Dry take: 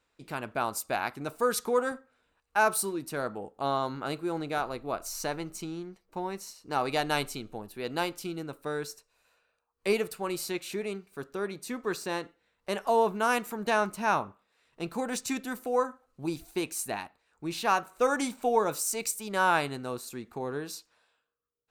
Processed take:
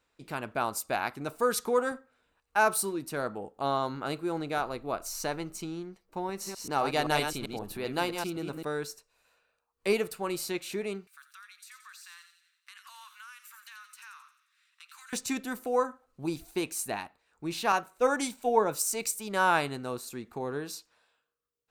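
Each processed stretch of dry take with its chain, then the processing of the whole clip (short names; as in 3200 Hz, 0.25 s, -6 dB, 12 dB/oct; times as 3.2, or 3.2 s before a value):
6.29–8.65 reverse delay 0.13 s, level -5.5 dB + upward compressor, threshold -31 dBFS
11.07–15.13 steep high-pass 1200 Hz 48 dB/oct + compressor, threshold -47 dBFS + thin delay 88 ms, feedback 53%, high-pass 2800 Hz, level -6.5 dB
17.72–18.82 notch 1200 Hz + three-band expander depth 70%
whole clip: dry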